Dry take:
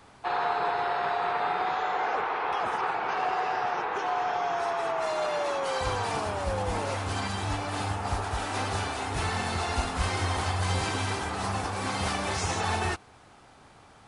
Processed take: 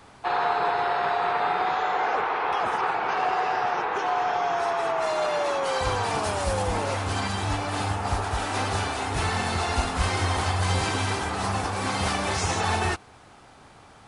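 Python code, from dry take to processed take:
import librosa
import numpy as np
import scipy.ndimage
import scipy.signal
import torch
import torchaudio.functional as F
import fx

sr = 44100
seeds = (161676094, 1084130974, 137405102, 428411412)

y = fx.high_shelf(x, sr, hz=fx.line((6.23, 4000.0), (6.66, 5700.0)), db=10.0, at=(6.23, 6.66), fade=0.02)
y = F.gain(torch.from_numpy(y), 3.5).numpy()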